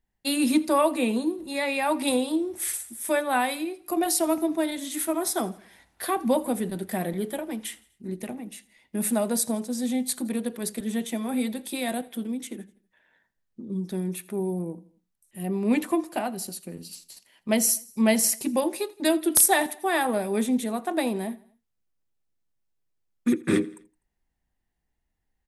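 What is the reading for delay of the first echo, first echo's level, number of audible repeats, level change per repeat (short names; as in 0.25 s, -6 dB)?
83 ms, -22.0 dB, 3, -6.0 dB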